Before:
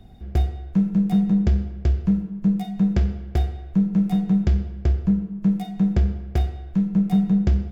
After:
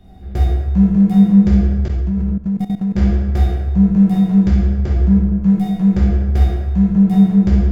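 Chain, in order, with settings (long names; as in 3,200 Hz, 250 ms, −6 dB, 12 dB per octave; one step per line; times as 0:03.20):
dense smooth reverb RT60 1.6 s, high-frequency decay 0.5×, DRR −6.5 dB
0:01.88–0:02.98: output level in coarse steps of 16 dB
level −1 dB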